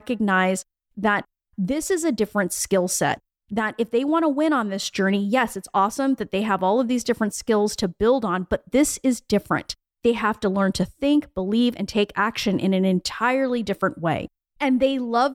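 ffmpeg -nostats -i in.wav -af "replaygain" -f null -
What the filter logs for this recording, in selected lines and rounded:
track_gain = +2.9 dB
track_peak = 0.254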